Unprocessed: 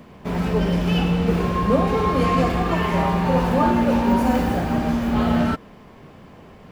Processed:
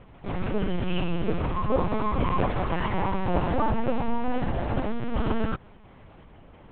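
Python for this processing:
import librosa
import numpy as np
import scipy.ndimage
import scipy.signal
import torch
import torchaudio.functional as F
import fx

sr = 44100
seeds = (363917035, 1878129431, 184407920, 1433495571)

y = fx.lpc_vocoder(x, sr, seeds[0], excitation='pitch_kept', order=8)
y = F.gain(torch.from_numpy(y), -5.0).numpy()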